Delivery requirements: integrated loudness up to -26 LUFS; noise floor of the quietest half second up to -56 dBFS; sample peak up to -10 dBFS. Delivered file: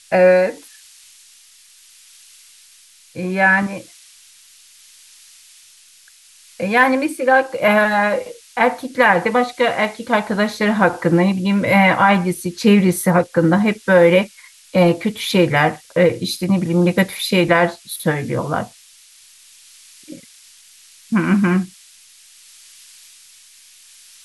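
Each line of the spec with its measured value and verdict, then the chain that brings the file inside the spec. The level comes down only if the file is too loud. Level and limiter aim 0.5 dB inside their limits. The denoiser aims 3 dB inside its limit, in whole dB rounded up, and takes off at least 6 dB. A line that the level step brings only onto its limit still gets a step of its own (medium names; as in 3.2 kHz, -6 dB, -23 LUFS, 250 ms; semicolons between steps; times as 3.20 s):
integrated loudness -16.5 LUFS: fail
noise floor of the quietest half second -48 dBFS: fail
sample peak -2.5 dBFS: fail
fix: trim -10 dB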